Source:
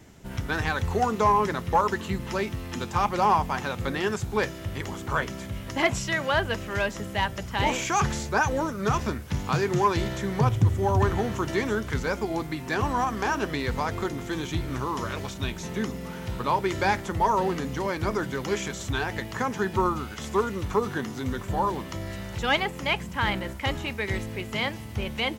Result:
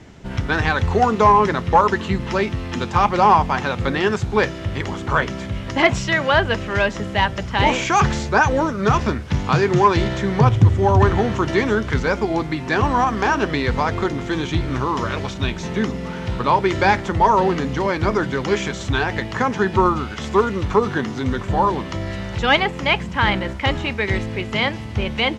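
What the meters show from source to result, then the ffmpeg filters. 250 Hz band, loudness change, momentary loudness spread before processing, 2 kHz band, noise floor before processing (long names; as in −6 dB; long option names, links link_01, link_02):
+8.0 dB, +8.0 dB, 8 LU, +8.0 dB, −38 dBFS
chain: -af "lowpass=5000,volume=8dB"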